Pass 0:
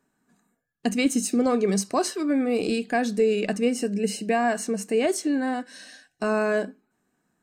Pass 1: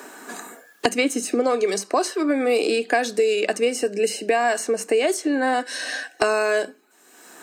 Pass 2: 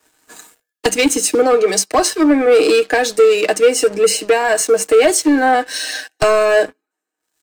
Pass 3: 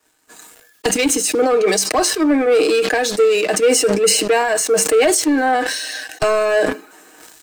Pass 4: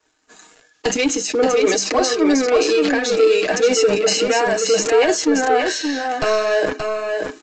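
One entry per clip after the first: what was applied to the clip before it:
high-pass 330 Hz 24 dB/octave; three bands compressed up and down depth 100%; trim +4 dB
comb 6.4 ms, depth 61%; waveshaping leveller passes 3; three bands expanded up and down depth 100%; trim -3 dB
decay stretcher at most 42 dB/s; trim -3.5 dB
flange 0.6 Hz, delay 1.8 ms, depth 7.3 ms, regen -52%; on a send: delay 577 ms -5 dB; on the sum: resampled via 16 kHz; trim +2 dB

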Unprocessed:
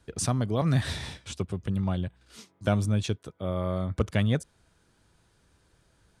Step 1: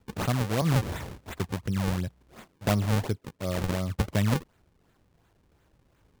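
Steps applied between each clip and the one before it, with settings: decimation with a swept rate 38×, swing 160% 2.8 Hz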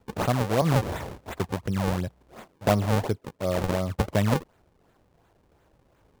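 peaking EQ 640 Hz +7 dB 1.9 oct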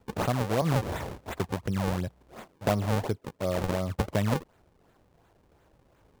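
compression 1.5:1, threshold -28 dBFS, peak gain reduction 5 dB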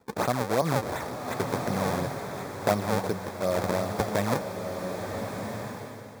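high-pass 280 Hz 6 dB/octave; peaking EQ 2.9 kHz -14 dB 0.2 oct; swelling reverb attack 1360 ms, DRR 4 dB; trim +3.5 dB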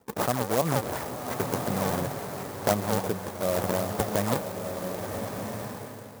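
sampling jitter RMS 0.067 ms

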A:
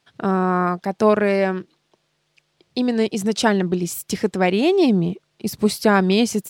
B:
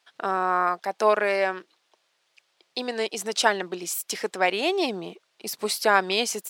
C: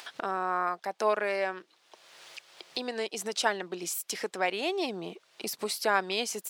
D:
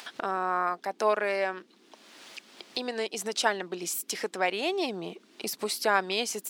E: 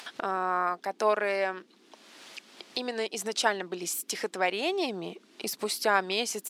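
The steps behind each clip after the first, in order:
high-pass 620 Hz 12 dB/octave
upward compressor, threshold -22 dBFS; trim -6.5 dB
band noise 200–410 Hz -64 dBFS; trim +1.5 dB
resampled via 32 kHz

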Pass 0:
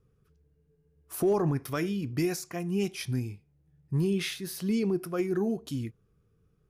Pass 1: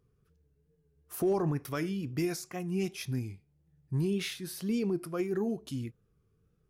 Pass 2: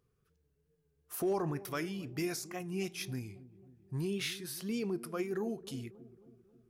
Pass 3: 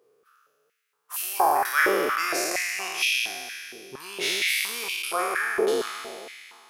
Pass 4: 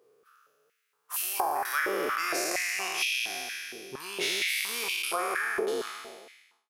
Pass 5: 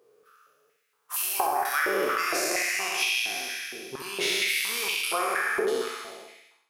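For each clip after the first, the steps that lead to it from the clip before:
wow and flutter 73 cents; trim -3 dB
bass shelf 410 Hz -7.5 dB; feedback echo behind a low-pass 270 ms, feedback 55%, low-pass 630 Hz, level -16 dB
spectral sustain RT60 2.51 s; step-sequenced high-pass 4.3 Hz 450–2700 Hz; trim +7 dB
fade out at the end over 1.38 s; compression 5:1, threshold -26 dBFS, peak gain reduction 9 dB
flutter echo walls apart 11.3 m, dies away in 0.6 s; trim +2 dB

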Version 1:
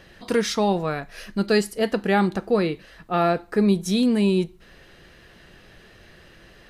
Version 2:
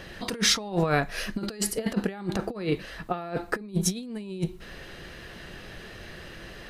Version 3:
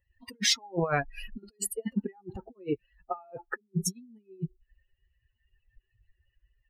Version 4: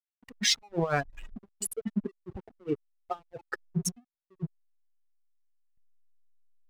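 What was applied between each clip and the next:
compressor with a negative ratio -27 dBFS, ratio -0.5
expander on every frequency bin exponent 3; trim +1 dB
local Wiener filter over 9 samples; hysteresis with a dead band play -41.5 dBFS

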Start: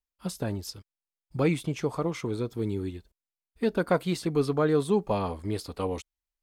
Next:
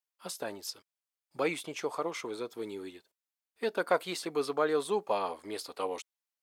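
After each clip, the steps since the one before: high-pass 510 Hz 12 dB/octave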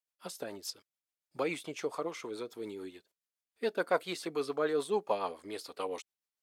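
rotary cabinet horn 7 Hz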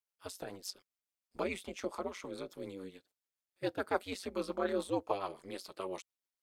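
ring modulator 94 Hz

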